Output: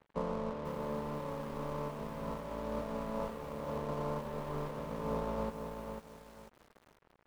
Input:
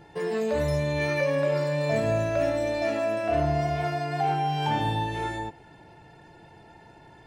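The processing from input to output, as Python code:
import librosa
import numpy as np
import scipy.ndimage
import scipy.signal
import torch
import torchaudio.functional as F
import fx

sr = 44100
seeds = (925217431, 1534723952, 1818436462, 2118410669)

y = fx.spec_flatten(x, sr, power=0.14)
y = scipy.signal.sosfilt(scipy.signal.butter(6, 950.0, 'lowpass', fs=sr, output='sos'), y)
y = fx.over_compress(y, sr, threshold_db=-40.0, ratio=-1.0)
y = fx.fixed_phaser(y, sr, hz=500.0, stages=8)
y = np.sign(y) * np.maximum(np.abs(y) - 10.0 ** (-54.5 / 20.0), 0.0)
y = fx.echo_crushed(y, sr, ms=495, feedback_pct=35, bits=10, wet_db=-6)
y = F.gain(torch.from_numpy(y), 6.5).numpy()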